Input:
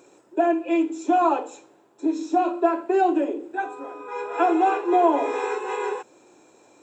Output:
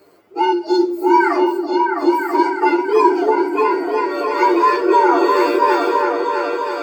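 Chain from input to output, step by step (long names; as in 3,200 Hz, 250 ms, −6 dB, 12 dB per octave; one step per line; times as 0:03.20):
partials spread apart or drawn together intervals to 126%
echo whose low-pass opens from repeat to repeat 329 ms, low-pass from 400 Hz, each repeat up 2 octaves, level 0 dB
level +7 dB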